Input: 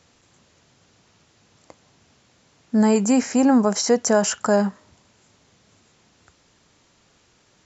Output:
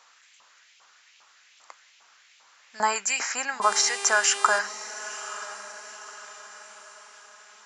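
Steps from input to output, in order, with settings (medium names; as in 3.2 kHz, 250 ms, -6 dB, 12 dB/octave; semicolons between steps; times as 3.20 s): LFO high-pass saw up 2.5 Hz 930–2700 Hz; 3.61–4.58 s: mains buzz 400 Hz, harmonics 25, -37 dBFS -2 dB/octave; echo that smears into a reverb 944 ms, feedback 47%, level -14 dB; trim +1.5 dB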